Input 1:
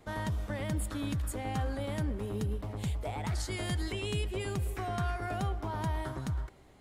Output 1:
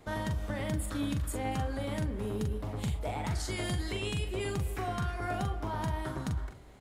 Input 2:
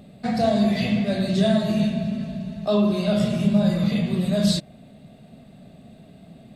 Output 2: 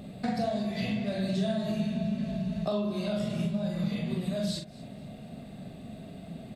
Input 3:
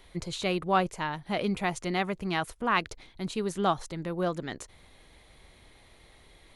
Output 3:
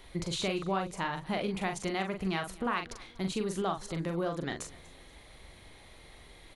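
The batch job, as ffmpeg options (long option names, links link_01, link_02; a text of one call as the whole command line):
ffmpeg -i in.wav -filter_complex "[0:a]acompressor=threshold=-32dB:ratio=5,asplit=2[link_01][link_02];[link_02]adelay=42,volume=-6dB[link_03];[link_01][link_03]amix=inputs=2:normalize=0,asplit=2[link_04][link_05];[link_05]aecho=0:1:241|482|723:0.0841|0.0311|0.0115[link_06];[link_04][link_06]amix=inputs=2:normalize=0,volume=2dB" out.wav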